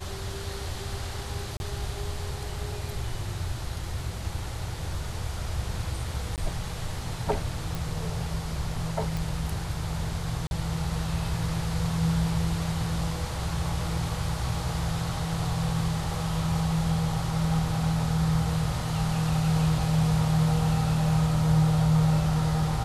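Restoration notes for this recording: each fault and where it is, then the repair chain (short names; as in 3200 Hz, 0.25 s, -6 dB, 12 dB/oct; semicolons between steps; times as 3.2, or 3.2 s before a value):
1.57–1.6 gap 31 ms
6.36–6.38 gap 18 ms
7.75 pop
9.17 pop
10.47–10.51 gap 41 ms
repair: de-click; interpolate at 1.57, 31 ms; interpolate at 6.36, 18 ms; interpolate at 10.47, 41 ms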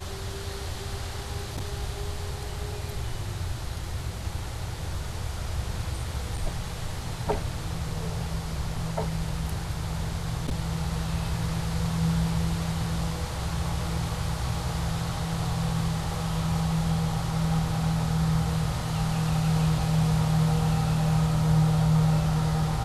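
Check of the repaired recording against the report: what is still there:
none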